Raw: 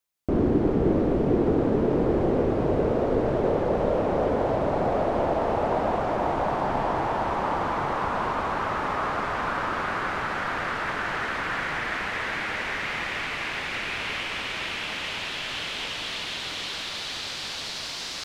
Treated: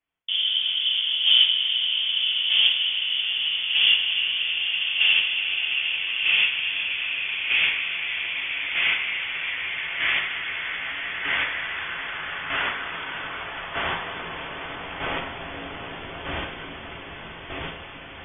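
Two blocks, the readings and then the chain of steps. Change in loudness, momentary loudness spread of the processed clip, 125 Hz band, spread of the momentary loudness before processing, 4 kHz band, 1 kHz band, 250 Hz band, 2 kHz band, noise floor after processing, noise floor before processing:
+4.5 dB, 17 LU, -14.0 dB, 7 LU, +13.5 dB, -9.0 dB, -17.0 dB, +6.0 dB, -39 dBFS, -34 dBFS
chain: chopper 0.8 Hz, depth 60%, duty 15%; inverted band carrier 3400 Hz; thin delay 0.283 s, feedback 49%, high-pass 2200 Hz, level -13 dB; two-slope reverb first 0.49 s, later 1.7 s, DRR -2 dB; gain +1.5 dB

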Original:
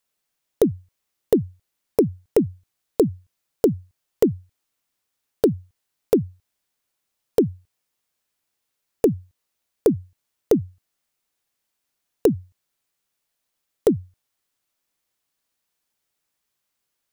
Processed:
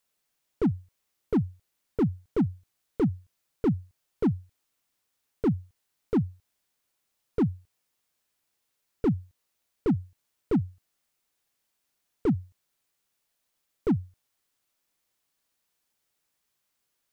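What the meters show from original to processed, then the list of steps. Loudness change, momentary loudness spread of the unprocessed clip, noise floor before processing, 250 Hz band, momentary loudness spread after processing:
-6.5 dB, 12 LU, -79 dBFS, -3.5 dB, 9 LU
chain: slew limiter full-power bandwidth 31 Hz

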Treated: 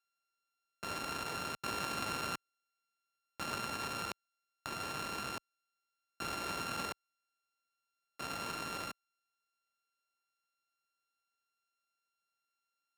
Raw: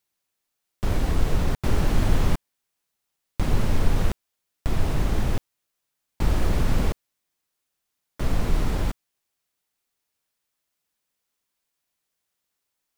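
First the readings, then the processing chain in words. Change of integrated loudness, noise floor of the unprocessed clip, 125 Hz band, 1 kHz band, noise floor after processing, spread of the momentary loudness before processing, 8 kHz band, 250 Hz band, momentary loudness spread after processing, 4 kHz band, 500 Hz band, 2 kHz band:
-12.5 dB, -81 dBFS, -26.0 dB, -4.5 dB, under -85 dBFS, 9 LU, -4.5 dB, -17.5 dB, 9 LU, -3.5 dB, -13.5 dB, -4.5 dB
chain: sample sorter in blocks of 32 samples; weighting filter A; gain -7.5 dB

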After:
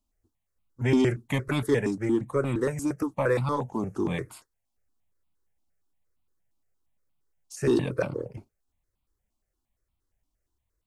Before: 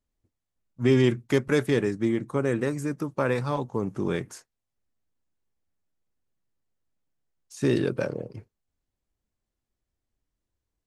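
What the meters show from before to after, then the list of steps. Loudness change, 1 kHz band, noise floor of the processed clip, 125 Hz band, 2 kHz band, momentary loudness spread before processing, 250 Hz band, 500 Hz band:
-1.0 dB, +1.0 dB, -81 dBFS, -1.0 dB, -1.5 dB, 9 LU, -1.0 dB, -1.5 dB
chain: in parallel at -3.5 dB: soft clip -22 dBFS, distortion -9 dB; on the sum: step phaser 8.6 Hz 470–1700 Hz

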